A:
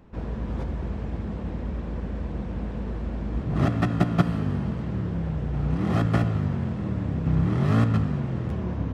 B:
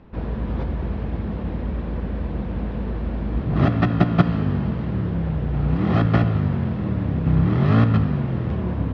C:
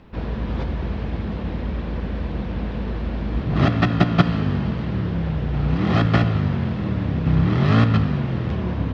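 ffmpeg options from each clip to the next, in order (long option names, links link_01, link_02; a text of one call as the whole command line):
ffmpeg -i in.wav -af "lowpass=frequency=4500:width=0.5412,lowpass=frequency=4500:width=1.3066,volume=4.5dB" out.wav
ffmpeg -i in.wav -af "highshelf=frequency=2400:gain=11" out.wav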